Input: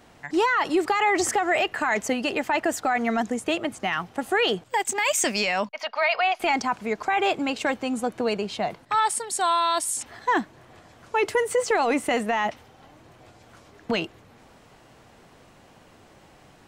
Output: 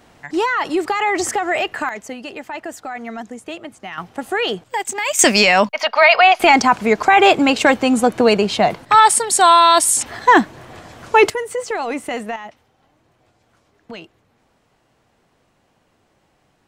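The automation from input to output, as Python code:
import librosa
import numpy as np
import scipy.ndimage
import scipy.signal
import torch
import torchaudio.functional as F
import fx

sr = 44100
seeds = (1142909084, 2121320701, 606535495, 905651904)

y = fx.gain(x, sr, db=fx.steps((0.0, 3.0), (1.89, -5.5), (3.98, 2.0), (5.19, 12.0), (11.3, -1.0), (12.36, -9.0)))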